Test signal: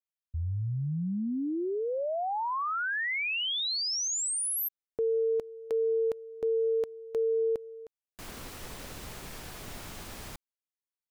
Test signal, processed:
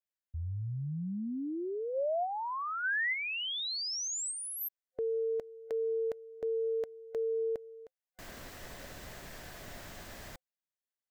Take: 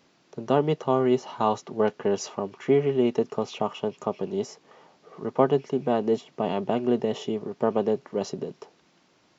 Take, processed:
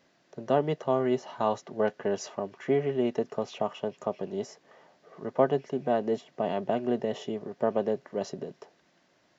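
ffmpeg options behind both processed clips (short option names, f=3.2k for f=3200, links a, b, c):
-af "superequalizer=8b=1.78:11b=1.78:16b=0.631,volume=-5dB"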